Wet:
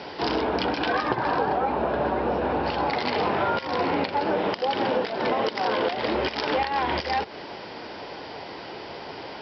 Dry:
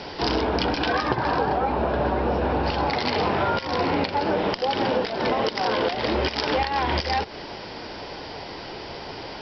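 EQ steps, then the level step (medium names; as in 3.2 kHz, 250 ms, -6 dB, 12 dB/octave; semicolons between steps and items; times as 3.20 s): high-pass 200 Hz 6 dB/octave; distance through air 120 m; 0.0 dB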